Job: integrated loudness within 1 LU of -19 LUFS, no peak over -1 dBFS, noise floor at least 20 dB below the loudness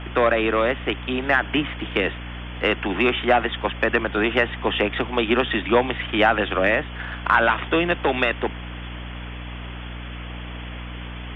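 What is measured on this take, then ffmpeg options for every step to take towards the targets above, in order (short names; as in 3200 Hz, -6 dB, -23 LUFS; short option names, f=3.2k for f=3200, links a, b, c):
hum 60 Hz; harmonics up to 300 Hz; hum level -32 dBFS; noise floor -34 dBFS; noise floor target -42 dBFS; loudness -21.5 LUFS; peak -4.5 dBFS; loudness target -19.0 LUFS
-> -af "bandreject=f=60:t=h:w=4,bandreject=f=120:t=h:w=4,bandreject=f=180:t=h:w=4,bandreject=f=240:t=h:w=4,bandreject=f=300:t=h:w=4"
-af "afftdn=nr=8:nf=-34"
-af "volume=2.5dB"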